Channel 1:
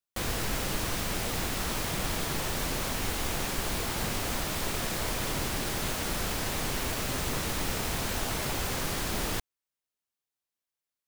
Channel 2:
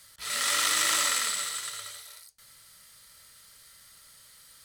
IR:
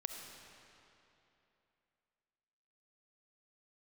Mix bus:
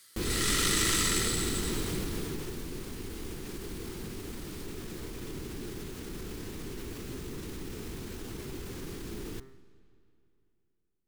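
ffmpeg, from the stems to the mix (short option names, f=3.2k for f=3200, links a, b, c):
-filter_complex "[0:a]bandreject=f=132.3:t=h:w=4,bandreject=f=264.6:t=h:w=4,bandreject=f=396.9:t=h:w=4,bandreject=f=529.2:t=h:w=4,bandreject=f=661.5:t=h:w=4,bandreject=f=793.8:t=h:w=4,bandreject=f=926.1:t=h:w=4,bandreject=f=1.0584k:t=h:w=4,bandreject=f=1.1907k:t=h:w=4,bandreject=f=1.323k:t=h:w=4,bandreject=f=1.4553k:t=h:w=4,bandreject=f=1.5876k:t=h:w=4,bandreject=f=1.7199k:t=h:w=4,bandreject=f=1.8522k:t=h:w=4,bandreject=f=1.9845k:t=h:w=4,bandreject=f=2.1168k:t=h:w=4,bandreject=f=2.2491k:t=h:w=4,bandreject=f=2.3814k:t=h:w=4,alimiter=level_in=4.5dB:limit=-24dB:level=0:latency=1,volume=-4.5dB,volume=-2dB,afade=t=out:st=1.84:d=0.78:silence=0.421697,asplit=2[a][b];[b]volume=-11.5dB[c];[1:a]highpass=f=880:p=1,volume=-2.5dB[d];[2:a]atrim=start_sample=2205[e];[c][e]afir=irnorm=-1:irlink=0[f];[a][d][f]amix=inputs=3:normalize=0,lowshelf=f=490:t=q:w=3:g=7.5"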